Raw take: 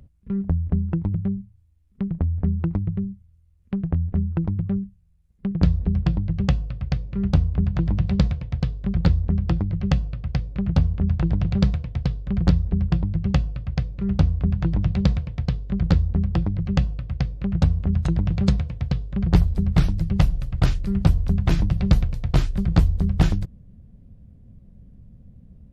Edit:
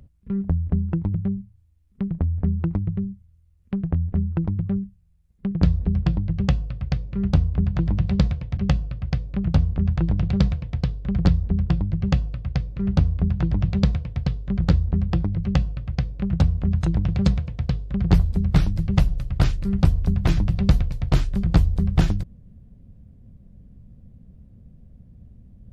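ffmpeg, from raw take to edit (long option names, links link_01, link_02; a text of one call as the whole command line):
ffmpeg -i in.wav -filter_complex "[0:a]asplit=2[link_01][link_02];[link_01]atrim=end=8.572[link_03];[link_02]atrim=start=9.788[link_04];[link_03][link_04]acrossfade=duration=0.004:curve1=hsin:curve2=hsin" out.wav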